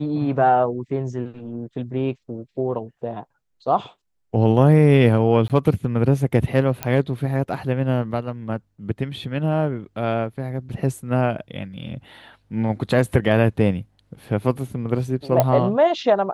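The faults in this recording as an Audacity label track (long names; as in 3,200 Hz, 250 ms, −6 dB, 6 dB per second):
5.480000	5.500000	drop-out 18 ms
6.830000	6.830000	click −8 dBFS
15.400000	15.400000	click −4 dBFS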